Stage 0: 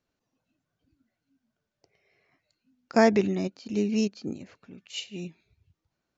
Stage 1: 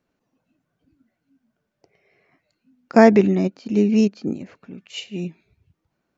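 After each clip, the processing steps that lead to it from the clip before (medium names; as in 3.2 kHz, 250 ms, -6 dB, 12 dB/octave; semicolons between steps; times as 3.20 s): FFT filter 100 Hz 0 dB, 180 Hz +6 dB, 2.3 kHz +2 dB, 4 kHz -3 dB; trim +3.5 dB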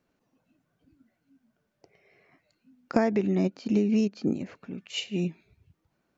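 compression 16:1, threshold -20 dBFS, peak gain reduction 14.5 dB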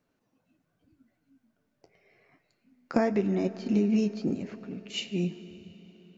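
flange 0.84 Hz, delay 6.5 ms, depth 5.9 ms, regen -51%; reverberation RT60 4.8 s, pre-delay 55 ms, DRR 14.5 dB; trim +2.5 dB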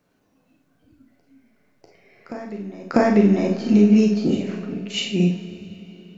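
reverse echo 645 ms -16.5 dB; Schroeder reverb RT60 0.39 s, combs from 30 ms, DRR 2 dB; trim +7.5 dB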